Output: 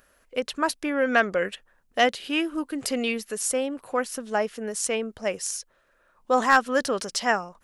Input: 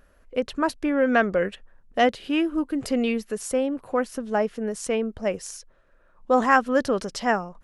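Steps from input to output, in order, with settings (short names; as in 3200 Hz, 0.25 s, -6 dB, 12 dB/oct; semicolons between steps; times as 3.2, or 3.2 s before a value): tilt +2.5 dB/oct; hard clip -8 dBFS, distortion -25 dB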